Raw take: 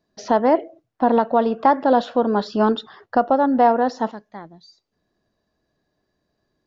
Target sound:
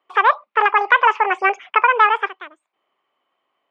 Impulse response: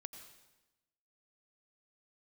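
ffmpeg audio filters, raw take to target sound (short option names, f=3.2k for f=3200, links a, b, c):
-af "highpass=250,equalizer=f=280:t=q:w=4:g=-4,equalizer=f=570:t=q:w=4:g=5,equalizer=f=1.3k:t=q:w=4:g=9,lowpass=f=2.2k:w=0.5412,lowpass=f=2.2k:w=1.3066,asetrate=79380,aresample=44100,volume=1dB"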